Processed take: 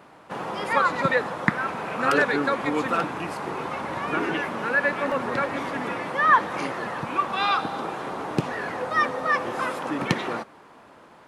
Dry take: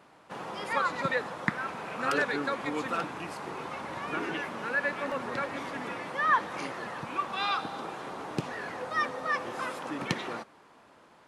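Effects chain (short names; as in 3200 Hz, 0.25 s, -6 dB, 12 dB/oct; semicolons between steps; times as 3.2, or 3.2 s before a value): bell 6000 Hz -4.5 dB 2.4 oct; gain +8 dB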